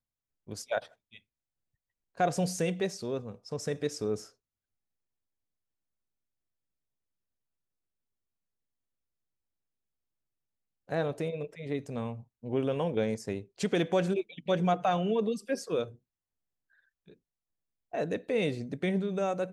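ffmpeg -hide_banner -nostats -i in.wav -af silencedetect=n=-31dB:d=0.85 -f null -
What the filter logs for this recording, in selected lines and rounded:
silence_start: 0.79
silence_end: 2.20 | silence_duration: 1.41
silence_start: 4.15
silence_end: 10.92 | silence_duration: 6.77
silence_start: 15.84
silence_end: 17.94 | silence_duration: 2.11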